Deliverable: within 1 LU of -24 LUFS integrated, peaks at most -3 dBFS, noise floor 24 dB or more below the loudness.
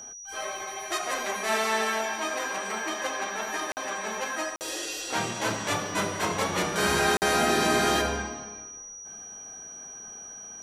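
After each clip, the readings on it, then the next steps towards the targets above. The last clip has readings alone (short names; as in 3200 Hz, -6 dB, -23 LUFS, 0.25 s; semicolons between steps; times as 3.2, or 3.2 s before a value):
dropouts 3; longest dropout 49 ms; steady tone 5800 Hz; tone level -40 dBFS; loudness -27.5 LUFS; peak -12.0 dBFS; loudness target -24.0 LUFS
-> interpolate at 3.72/4.56/7.17, 49 ms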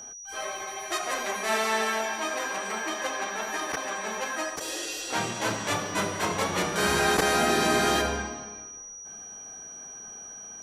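dropouts 0; steady tone 5800 Hz; tone level -40 dBFS
-> notch 5800 Hz, Q 30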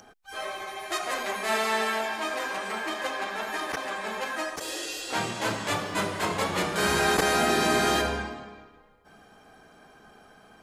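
steady tone none; loudness -27.5 LUFS; peak -11.0 dBFS; loudness target -24.0 LUFS
-> gain +3.5 dB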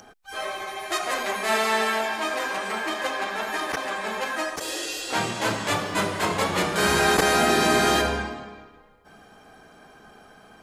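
loudness -24.0 LUFS; peak -7.5 dBFS; noise floor -52 dBFS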